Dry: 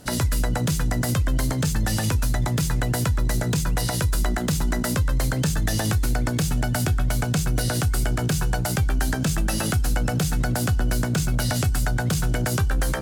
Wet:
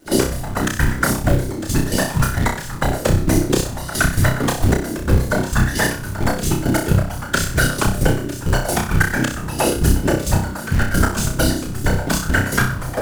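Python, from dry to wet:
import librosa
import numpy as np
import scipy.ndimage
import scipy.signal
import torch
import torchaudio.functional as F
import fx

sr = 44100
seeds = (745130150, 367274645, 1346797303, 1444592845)

p1 = x + 0.65 * np.pad(x, (int(3.4 * sr / 1000.0), 0))[:len(x)]
p2 = fx.whisperise(p1, sr, seeds[0])
p3 = fx.step_gate(p2, sr, bpm=133, pattern='.x...x.x.x', floor_db=-12.0, edge_ms=4.5)
p4 = fx.quant_companded(p3, sr, bits=4)
p5 = p3 + (p4 * 10.0 ** (-3.0 / 20.0))
p6 = fx.room_flutter(p5, sr, wall_m=5.4, rt60_s=0.43)
p7 = fx.bell_lfo(p6, sr, hz=0.6, low_hz=320.0, high_hz=1800.0, db=10)
y = p7 * 10.0 ** (-1.0 / 20.0)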